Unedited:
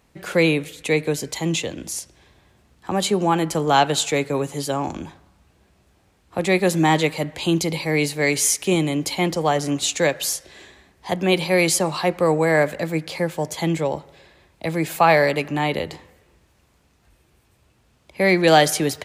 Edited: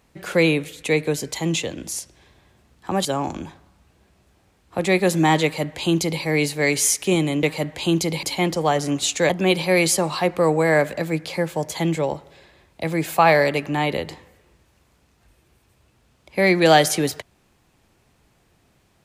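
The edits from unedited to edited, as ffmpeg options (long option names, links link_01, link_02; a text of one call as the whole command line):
ffmpeg -i in.wav -filter_complex "[0:a]asplit=5[link_01][link_02][link_03][link_04][link_05];[link_01]atrim=end=3.052[link_06];[link_02]atrim=start=4.648:end=9.032[link_07];[link_03]atrim=start=7.028:end=7.832[link_08];[link_04]atrim=start=9.028:end=10.092[link_09];[link_05]atrim=start=11.108[link_10];[link_06][link_07]acrossfade=duration=0.004:curve1=hsin:curve2=hsin[link_11];[link_11][link_08]acrossfade=duration=0.004:curve1=hsin:curve2=hsin[link_12];[link_12][link_09]acrossfade=duration=0.004:curve1=hsin:curve2=hsin[link_13];[link_13][link_10]acrossfade=duration=0.004:curve1=hsin:curve2=hsin" out.wav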